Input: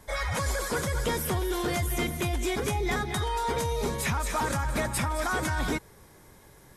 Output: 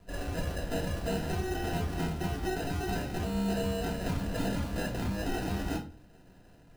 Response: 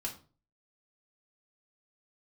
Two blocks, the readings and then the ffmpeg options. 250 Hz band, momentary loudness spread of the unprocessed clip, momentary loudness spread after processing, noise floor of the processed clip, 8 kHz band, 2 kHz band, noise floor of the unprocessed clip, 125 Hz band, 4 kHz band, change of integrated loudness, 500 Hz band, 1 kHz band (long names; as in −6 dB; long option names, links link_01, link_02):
+0.5 dB, 1 LU, 4 LU, −57 dBFS, −11.5 dB, −8.5 dB, −54 dBFS, −2.5 dB, −6.0 dB, −4.5 dB, −4.0 dB, −8.0 dB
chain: -filter_complex "[0:a]acrusher=samples=39:mix=1:aa=0.000001[link_01];[1:a]atrim=start_sample=2205[link_02];[link_01][link_02]afir=irnorm=-1:irlink=0,volume=-5dB"